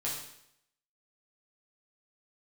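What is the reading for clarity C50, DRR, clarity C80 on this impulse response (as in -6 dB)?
3.0 dB, -6.0 dB, 6.0 dB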